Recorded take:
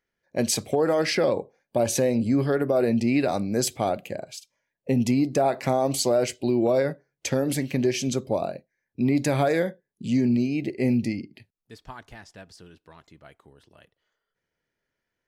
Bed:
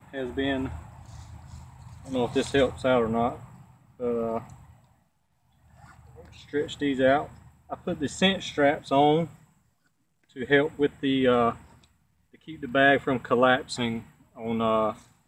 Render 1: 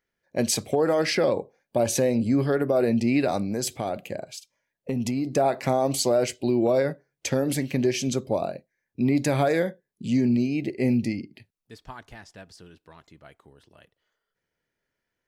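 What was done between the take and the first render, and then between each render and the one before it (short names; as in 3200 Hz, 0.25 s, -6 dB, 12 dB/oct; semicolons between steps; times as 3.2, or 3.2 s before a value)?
3.47–5.27 compressor 4:1, threshold -23 dBFS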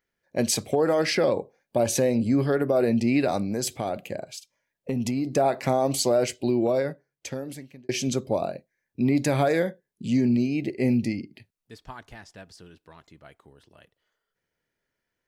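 6.43–7.89 fade out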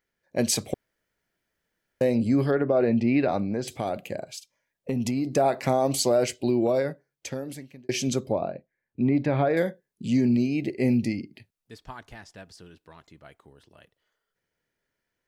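0.74–2.01 room tone; 2.51–3.68 LPF 3000 Hz; 8.32–9.57 air absorption 360 m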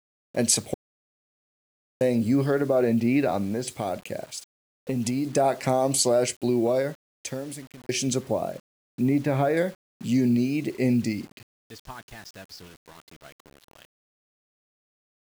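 low-pass sweep 9500 Hz -> 3800 Hz, 10.21–13.85; requantised 8-bit, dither none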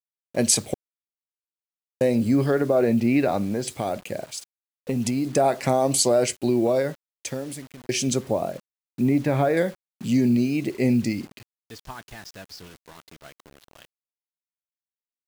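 gain +2 dB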